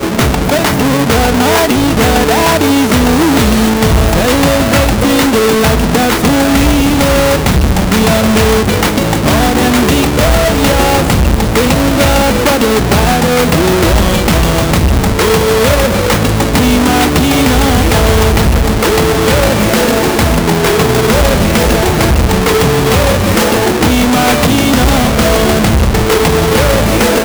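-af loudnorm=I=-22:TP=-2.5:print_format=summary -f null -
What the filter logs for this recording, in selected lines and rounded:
Input Integrated:     -9.7 LUFS
Input True Peak:      -1.9 dBTP
Input LRA:             0.6 LU
Input Threshold:     -19.7 LUFS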